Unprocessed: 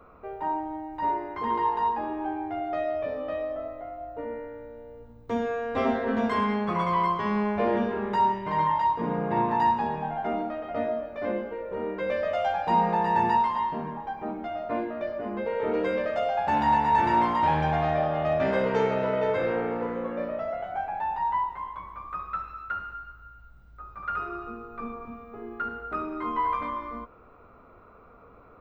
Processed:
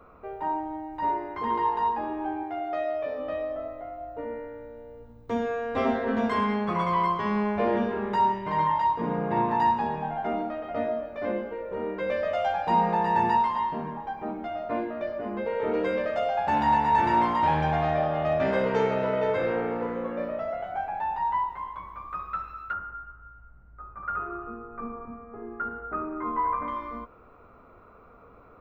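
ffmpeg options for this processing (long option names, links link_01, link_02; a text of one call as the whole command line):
ffmpeg -i in.wav -filter_complex "[0:a]asettb=1/sr,asplit=3[link_01][link_02][link_03];[link_01]atrim=end=2.434[link_04];[link_02]atrim=start=2.43:end=3.19,asetpts=PTS-STARTPTS,afade=type=in:duration=0.004:curve=qsin,afade=type=out:start_time=0.756:duration=0.004:curve=qsin,bass=frequency=250:gain=-9,treble=frequency=4000:gain=1[link_05];[link_03]atrim=start=3.186[link_06];[link_04][link_05]acrossfade=duration=0.004:curve1=hsin:curve2=qsin[link_07];[link_07][link_06]acrossfade=duration=0.004:curve1=qsin:curve2=hsin,asettb=1/sr,asplit=3[link_08][link_09][link_10];[link_08]atrim=end=22.734[link_11];[link_09]atrim=start=22.73:end=26.68,asetpts=PTS-STARTPTS,afade=type=in:duration=0.004:curve=qsin,afade=type=out:start_time=3.946:duration=0.004:curve=qsin,lowpass=frequency=1900:width=0.5412,lowpass=frequency=1900:width=1.3066[link_12];[link_10]atrim=start=26.676[link_13];[link_11][link_12]acrossfade=duration=0.004:curve1=hsin:curve2=qsin[link_14];[link_14][link_13]acrossfade=duration=0.004:curve1=qsin:curve2=hsin" out.wav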